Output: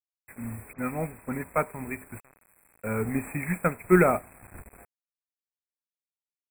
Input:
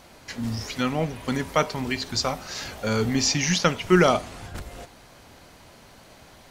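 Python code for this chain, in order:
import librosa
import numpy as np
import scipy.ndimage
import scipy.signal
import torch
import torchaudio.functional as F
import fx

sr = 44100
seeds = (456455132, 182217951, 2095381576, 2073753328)

y = fx.cvsd(x, sr, bps=64000)
y = fx.peak_eq(y, sr, hz=5700.0, db=6.0, octaves=0.28)
y = fx.level_steps(y, sr, step_db=22, at=(2.18, 2.84))
y = fx.quant_dither(y, sr, seeds[0], bits=6, dither='none')
y = fx.brickwall_bandstop(y, sr, low_hz=2600.0, high_hz=7500.0)
y = fx.dispersion(y, sr, late='highs', ms=58.0, hz=2800.0, at=(0.73, 1.44))
y = fx.upward_expand(y, sr, threshold_db=-37.0, expansion=1.5)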